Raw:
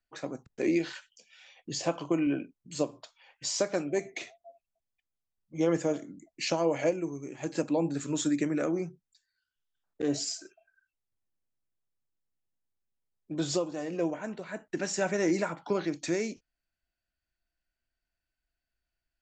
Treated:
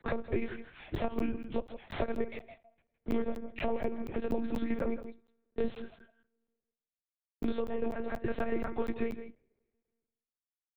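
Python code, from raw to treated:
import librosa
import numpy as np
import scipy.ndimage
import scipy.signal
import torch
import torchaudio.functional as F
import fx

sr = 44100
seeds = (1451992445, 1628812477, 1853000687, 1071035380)

p1 = fx.cvsd(x, sr, bps=64000)
p2 = fx.high_shelf(p1, sr, hz=2600.0, db=-9.5)
p3 = fx.rev_double_slope(p2, sr, seeds[0], early_s=0.86, late_s=2.2, knee_db=-26, drr_db=19.5)
p4 = fx.stretch_vocoder_free(p3, sr, factor=0.56)
p5 = fx.lpc_monotone(p4, sr, seeds[1], pitch_hz=230.0, order=10)
p6 = p5 + fx.echo_single(p5, sr, ms=161, db=-15.0, dry=0)
p7 = fx.buffer_crackle(p6, sr, first_s=0.95, period_s=0.24, block=512, kind='zero')
p8 = fx.band_squash(p7, sr, depth_pct=100)
y = p8 * 10.0 ** (2.0 / 20.0)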